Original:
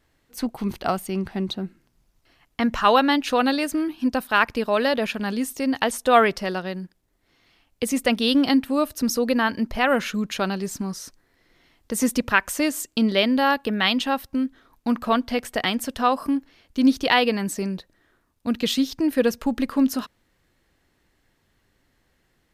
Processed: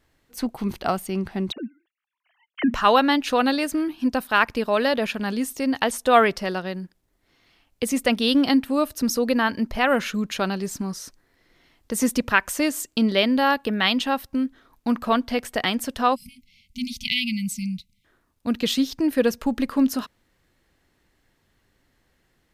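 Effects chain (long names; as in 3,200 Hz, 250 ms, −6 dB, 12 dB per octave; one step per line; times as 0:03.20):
0:01.52–0:02.74: three sine waves on the formant tracks
0:16.15–0:18.05: time-frequency box erased 250–2,000 Hz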